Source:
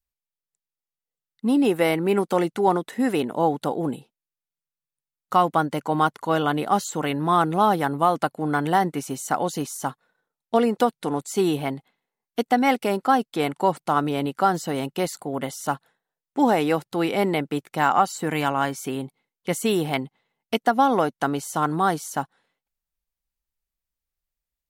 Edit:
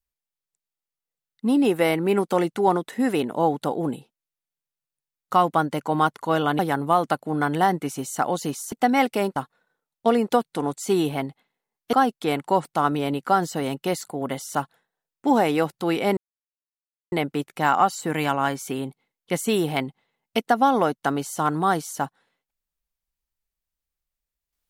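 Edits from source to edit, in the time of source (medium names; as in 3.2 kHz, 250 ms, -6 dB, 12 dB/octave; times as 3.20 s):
6.59–7.71 s: delete
12.41–13.05 s: move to 9.84 s
17.29 s: insert silence 0.95 s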